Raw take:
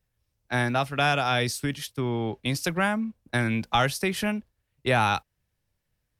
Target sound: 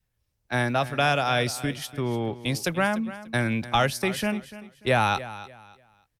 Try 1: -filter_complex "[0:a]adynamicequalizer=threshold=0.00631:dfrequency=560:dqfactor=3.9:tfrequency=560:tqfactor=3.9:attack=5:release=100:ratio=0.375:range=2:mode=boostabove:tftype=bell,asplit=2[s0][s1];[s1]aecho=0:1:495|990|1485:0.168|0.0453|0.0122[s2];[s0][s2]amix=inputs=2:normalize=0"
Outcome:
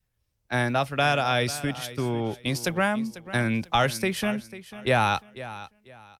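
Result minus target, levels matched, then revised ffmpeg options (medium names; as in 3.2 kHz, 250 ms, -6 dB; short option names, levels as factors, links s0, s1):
echo 202 ms late
-filter_complex "[0:a]adynamicequalizer=threshold=0.00631:dfrequency=560:dqfactor=3.9:tfrequency=560:tqfactor=3.9:attack=5:release=100:ratio=0.375:range=2:mode=boostabove:tftype=bell,asplit=2[s0][s1];[s1]aecho=0:1:293|586|879:0.168|0.0453|0.0122[s2];[s0][s2]amix=inputs=2:normalize=0"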